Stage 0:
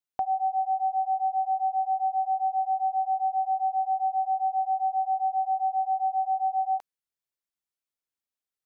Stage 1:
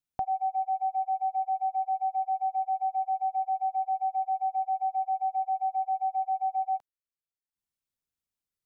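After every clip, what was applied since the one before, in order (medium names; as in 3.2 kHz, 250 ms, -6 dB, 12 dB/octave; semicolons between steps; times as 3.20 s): transient shaper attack 0 dB, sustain -12 dB; tone controls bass +12 dB, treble +2 dB; trim -2.5 dB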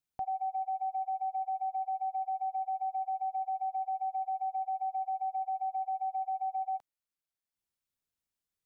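peak limiter -29 dBFS, peak gain reduction 8.5 dB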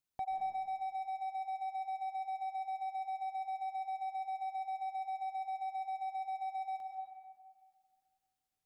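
in parallel at -3 dB: hard clipper -38 dBFS, distortion -9 dB; on the sum: reverberation RT60 1.8 s, pre-delay 100 ms, DRR 2.5 dB; trim -5.5 dB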